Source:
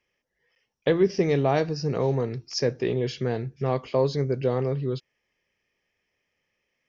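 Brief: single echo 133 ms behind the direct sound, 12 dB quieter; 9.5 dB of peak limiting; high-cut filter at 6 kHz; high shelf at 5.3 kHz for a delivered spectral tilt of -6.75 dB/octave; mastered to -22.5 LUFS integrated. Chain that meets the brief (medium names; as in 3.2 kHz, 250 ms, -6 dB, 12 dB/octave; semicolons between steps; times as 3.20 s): low-pass 6 kHz; treble shelf 5.3 kHz -5.5 dB; peak limiter -19.5 dBFS; delay 133 ms -12 dB; trim +7.5 dB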